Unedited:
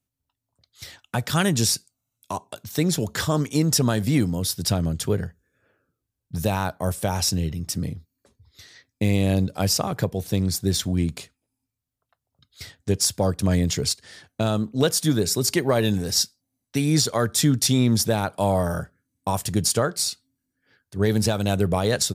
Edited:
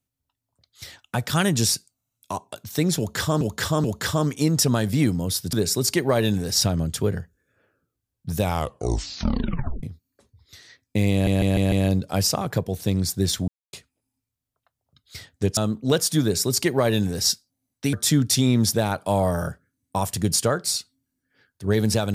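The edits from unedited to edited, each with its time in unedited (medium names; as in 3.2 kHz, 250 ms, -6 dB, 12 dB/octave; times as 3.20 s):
2.98–3.41 s: loop, 3 plays
6.43 s: tape stop 1.46 s
9.18 s: stutter 0.15 s, 5 plays
10.94–11.19 s: mute
13.03–14.48 s: delete
15.13–16.21 s: copy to 4.67 s
16.84–17.25 s: delete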